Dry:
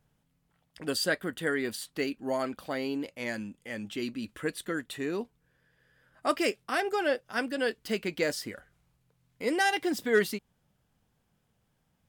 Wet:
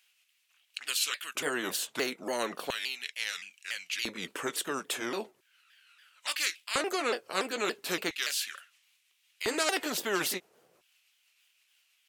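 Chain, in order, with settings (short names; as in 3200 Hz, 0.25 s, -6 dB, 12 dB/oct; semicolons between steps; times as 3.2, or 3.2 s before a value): repeated pitch sweeps -4.5 st, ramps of 0.285 s; LFO high-pass square 0.37 Hz 410–2700 Hz; spectral compressor 2:1; gain -1 dB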